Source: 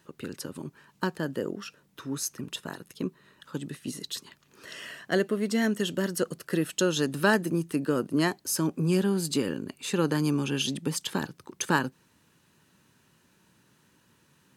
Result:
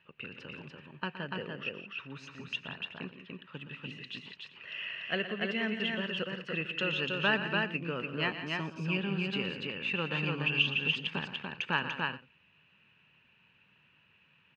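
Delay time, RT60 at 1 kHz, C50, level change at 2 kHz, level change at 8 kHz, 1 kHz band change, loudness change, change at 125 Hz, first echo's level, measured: 119 ms, no reverb audible, no reverb audible, +1.5 dB, below −25 dB, −4.5 dB, −4.0 dB, −6.5 dB, −12.0 dB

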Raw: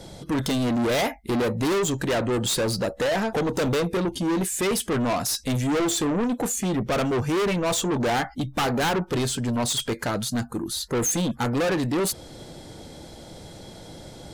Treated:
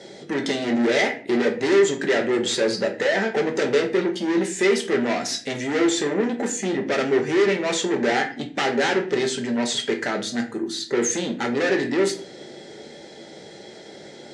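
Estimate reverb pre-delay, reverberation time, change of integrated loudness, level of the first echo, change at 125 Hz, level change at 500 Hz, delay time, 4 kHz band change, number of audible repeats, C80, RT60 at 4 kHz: 5 ms, 0.45 s, +2.5 dB, no echo audible, −8.5 dB, +4.5 dB, no echo audible, +1.5 dB, no echo audible, 16.0 dB, 0.35 s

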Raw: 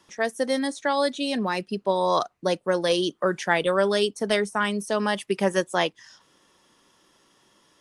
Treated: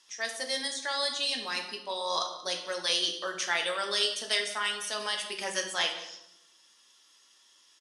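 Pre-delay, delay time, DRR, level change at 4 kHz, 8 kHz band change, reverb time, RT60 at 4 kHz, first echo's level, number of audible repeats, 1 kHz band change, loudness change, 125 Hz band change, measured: 4 ms, 183 ms, 2.0 dB, +3.0 dB, +3.0 dB, 0.80 s, 0.65 s, −17.5 dB, 1, −8.5 dB, −5.5 dB, below −20 dB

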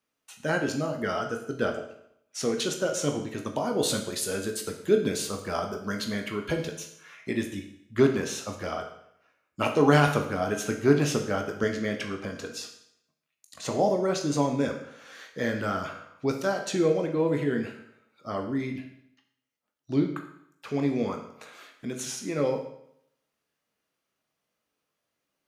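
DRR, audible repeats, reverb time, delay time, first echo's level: 3.5 dB, no echo audible, 0.70 s, no echo audible, no echo audible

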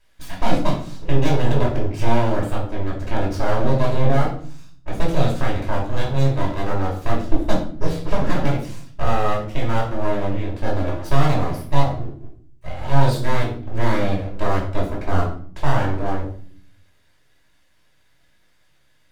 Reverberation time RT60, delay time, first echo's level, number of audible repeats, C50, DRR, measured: 0.50 s, no echo audible, no echo audible, no echo audible, 6.0 dB, −4.0 dB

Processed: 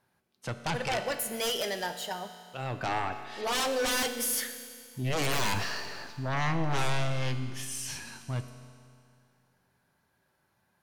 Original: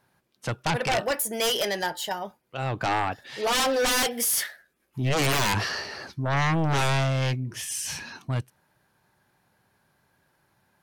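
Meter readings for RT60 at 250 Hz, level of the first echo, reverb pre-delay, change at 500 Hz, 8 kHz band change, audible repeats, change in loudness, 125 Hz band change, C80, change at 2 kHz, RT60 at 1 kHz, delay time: 2.3 s, no echo audible, 5 ms, −5.5 dB, −5.5 dB, no echo audible, −5.5 dB, −6.5 dB, 10.0 dB, −5.5 dB, 2.3 s, no echo audible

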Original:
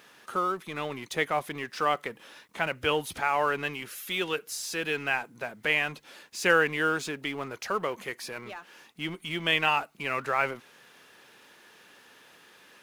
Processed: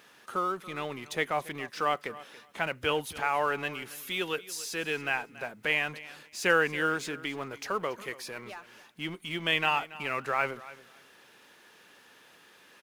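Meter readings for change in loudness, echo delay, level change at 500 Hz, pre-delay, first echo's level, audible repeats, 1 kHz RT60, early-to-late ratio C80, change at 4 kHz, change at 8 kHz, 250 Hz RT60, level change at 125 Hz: −2.0 dB, 281 ms, −2.0 dB, no reverb audible, −18.0 dB, 2, no reverb audible, no reverb audible, −2.0 dB, −2.0 dB, no reverb audible, −2.0 dB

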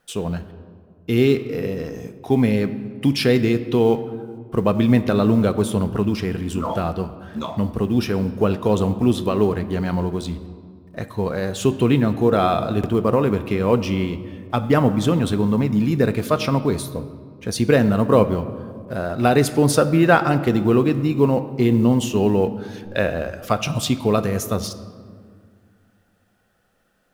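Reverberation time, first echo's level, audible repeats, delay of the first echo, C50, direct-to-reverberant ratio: 2.0 s, no echo audible, no echo audible, no echo audible, 13.0 dB, 11.0 dB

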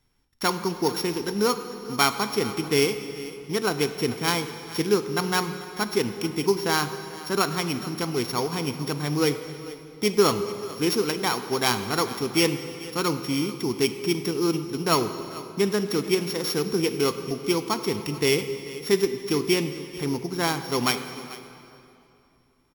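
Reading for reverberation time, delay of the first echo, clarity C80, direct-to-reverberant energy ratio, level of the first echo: 2.7 s, 441 ms, 10.0 dB, 8.5 dB, −18.0 dB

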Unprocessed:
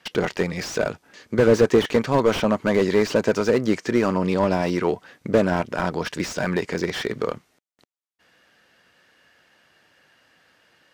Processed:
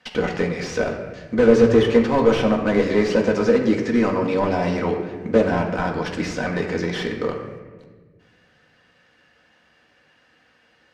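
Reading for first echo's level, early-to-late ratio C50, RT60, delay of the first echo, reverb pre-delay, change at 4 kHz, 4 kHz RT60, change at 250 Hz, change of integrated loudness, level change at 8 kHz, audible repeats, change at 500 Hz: no echo audible, 6.0 dB, 1.4 s, no echo audible, 4 ms, −0.5 dB, 0.90 s, +3.0 dB, +2.0 dB, −3.5 dB, no echo audible, +2.0 dB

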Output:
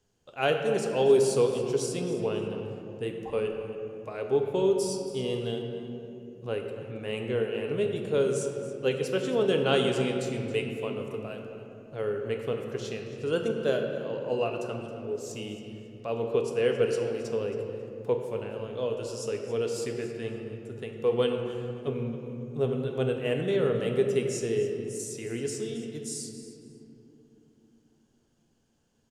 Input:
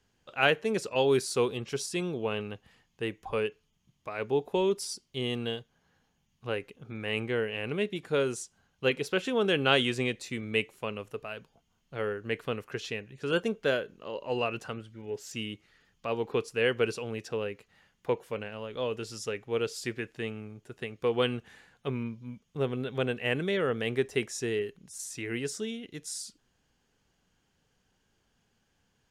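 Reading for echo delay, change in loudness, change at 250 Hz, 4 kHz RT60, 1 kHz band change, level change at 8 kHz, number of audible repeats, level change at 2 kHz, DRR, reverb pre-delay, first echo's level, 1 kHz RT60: 272 ms, +2.0 dB, +2.0 dB, 1.5 s, −1.0 dB, +1.5 dB, 1, −5.0 dB, 2.5 dB, 3 ms, −15.5 dB, 2.5 s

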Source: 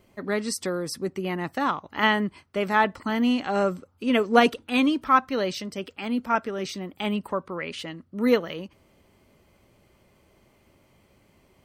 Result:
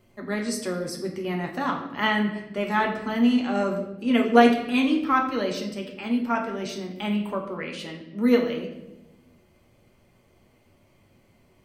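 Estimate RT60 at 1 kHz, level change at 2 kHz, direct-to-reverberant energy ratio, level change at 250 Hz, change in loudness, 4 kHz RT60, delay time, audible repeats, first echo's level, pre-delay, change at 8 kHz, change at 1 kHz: 0.80 s, −1.0 dB, 1.0 dB, +2.5 dB, +0.5 dB, 0.70 s, no echo audible, no echo audible, no echo audible, 3 ms, −1.5 dB, −1.0 dB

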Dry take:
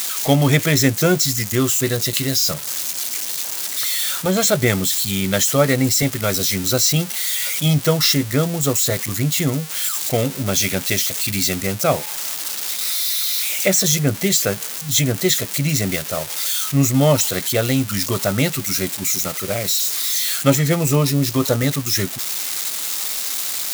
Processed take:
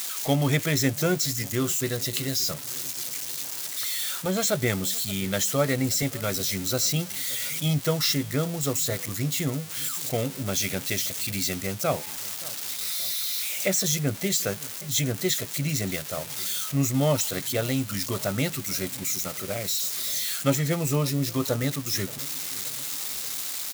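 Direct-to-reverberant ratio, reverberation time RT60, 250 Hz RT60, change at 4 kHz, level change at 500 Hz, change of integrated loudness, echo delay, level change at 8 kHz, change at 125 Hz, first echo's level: no reverb audible, no reverb audible, no reverb audible, −8.0 dB, −8.0 dB, −8.0 dB, 575 ms, −8.0 dB, −8.0 dB, −21.0 dB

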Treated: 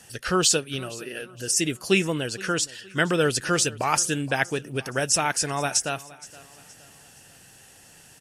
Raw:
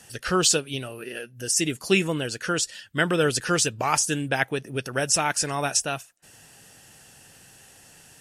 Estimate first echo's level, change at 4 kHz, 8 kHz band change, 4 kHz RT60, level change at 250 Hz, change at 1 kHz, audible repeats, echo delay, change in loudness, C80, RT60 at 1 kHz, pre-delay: −20.5 dB, 0.0 dB, 0.0 dB, no reverb audible, 0.0 dB, 0.0 dB, 2, 469 ms, 0.0 dB, no reverb audible, no reverb audible, no reverb audible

